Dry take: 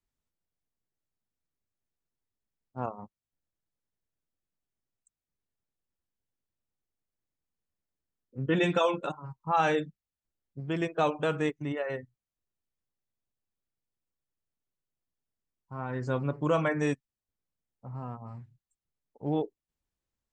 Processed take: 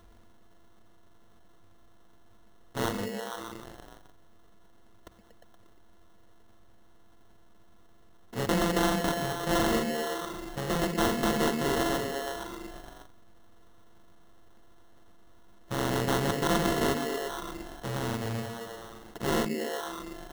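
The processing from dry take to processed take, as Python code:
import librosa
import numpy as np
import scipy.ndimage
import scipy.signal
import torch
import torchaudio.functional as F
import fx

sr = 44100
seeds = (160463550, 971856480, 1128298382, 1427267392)

p1 = np.r_[np.sort(x[:len(x) // 64 * 64].reshape(-1, 64), axis=1).ravel(), x[len(x) // 64 * 64:]]
p2 = fx.rider(p1, sr, range_db=10, speed_s=0.5)
p3 = p1 + F.gain(torch.from_numpy(p2), 3.0).numpy()
p4 = fx.ripple_eq(p3, sr, per_octave=0.89, db=13)
p5 = p4 + fx.echo_stepped(p4, sr, ms=118, hz=220.0, octaves=0.7, feedback_pct=70, wet_db=-5.0, dry=0)
p6 = fx.sample_hold(p5, sr, seeds[0], rate_hz=2400.0, jitter_pct=0)
p7 = fx.env_flatten(p6, sr, amount_pct=50)
y = F.gain(torch.from_numpy(p7), -7.5).numpy()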